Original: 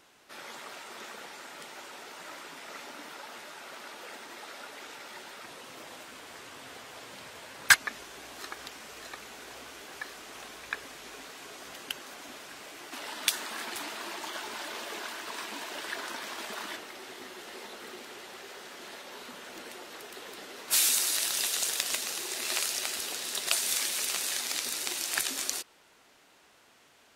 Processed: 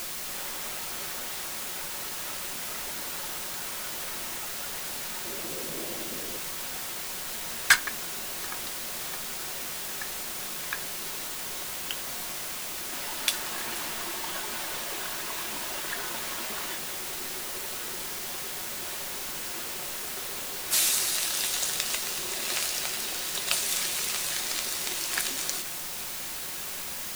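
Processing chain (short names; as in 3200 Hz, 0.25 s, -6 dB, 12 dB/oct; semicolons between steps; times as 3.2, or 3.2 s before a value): 5.25–6.38 resonant low shelf 630 Hz +10 dB, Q 1.5; requantised 6-bit, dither triangular; reverb RT60 0.20 s, pre-delay 5 ms, DRR 8 dB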